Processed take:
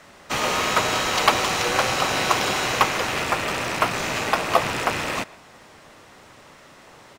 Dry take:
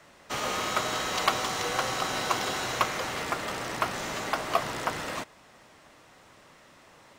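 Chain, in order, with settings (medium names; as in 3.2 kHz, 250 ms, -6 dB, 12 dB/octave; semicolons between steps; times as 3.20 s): rattle on loud lows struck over -44 dBFS, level -25 dBFS; speakerphone echo 130 ms, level -21 dB; harmony voices -5 st -7 dB; trim +6.5 dB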